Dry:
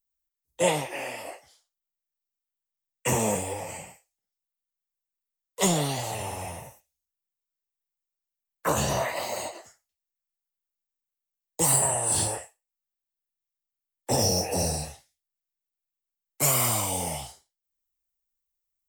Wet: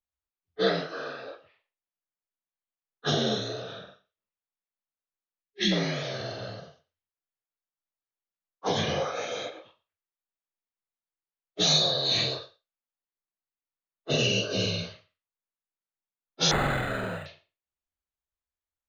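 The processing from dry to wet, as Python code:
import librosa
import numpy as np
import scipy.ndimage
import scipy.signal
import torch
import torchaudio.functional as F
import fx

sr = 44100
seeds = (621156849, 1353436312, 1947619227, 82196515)

p1 = fx.partial_stretch(x, sr, pct=78)
p2 = fx.env_lowpass(p1, sr, base_hz=1600.0, full_db=-25.5)
p3 = fx.spec_box(p2, sr, start_s=5.42, length_s=0.3, low_hz=430.0, high_hz=1600.0, gain_db=-22)
p4 = p3 + fx.echo_single(p3, sr, ms=115, db=-21.5, dry=0)
y = fx.resample_linear(p4, sr, factor=8, at=(16.51, 17.26))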